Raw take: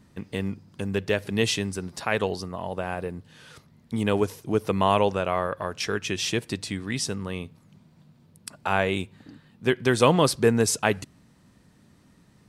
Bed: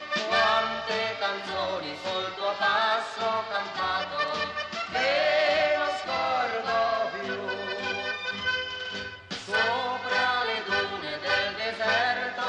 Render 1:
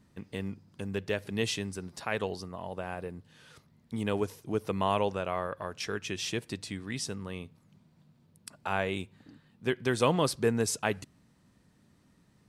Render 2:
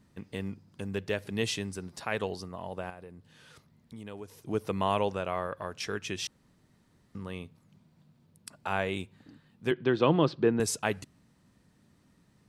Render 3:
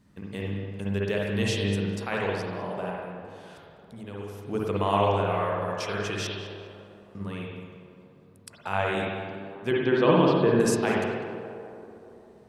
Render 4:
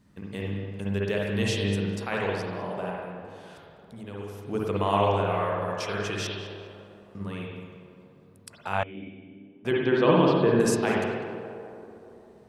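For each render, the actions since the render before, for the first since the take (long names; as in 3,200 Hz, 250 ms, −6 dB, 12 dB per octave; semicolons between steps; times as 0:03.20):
level −7 dB
0:02.90–0:04.38: downward compressor 2 to 1, threshold −49 dBFS; 0:06.27–0:07.15: fill with room tone; 0:09.71–0:10.60: loudspeaker in its box 130–3,800 Hz, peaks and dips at 150 Hz +7 dB, 330 Hz +9 dB, 2,100 Hz −5 dB
tape delay 200 ms, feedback 74%, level −9.5 dB, low-pass 1,900 Hz; spring reverb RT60 1.2 s, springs 50/60 ms, chirp 40 ms, DRR −3 dB
0:08.83–0:09.65: formant resonators in series i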